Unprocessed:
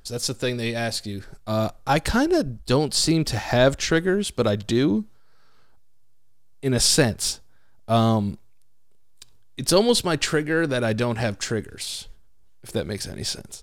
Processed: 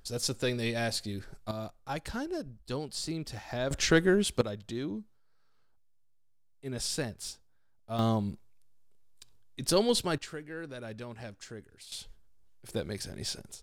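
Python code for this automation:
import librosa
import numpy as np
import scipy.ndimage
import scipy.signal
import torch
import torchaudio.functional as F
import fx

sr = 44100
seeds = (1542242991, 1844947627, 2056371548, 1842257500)

y = fx.gain(x, sr, db=fx.steps((0.0, -5.5), (1.51, -15.5), (3.71, -3.0), (4.41, -15.5), (7.99, -8.0), (10.18, -19.0), (11.92, -8.0)))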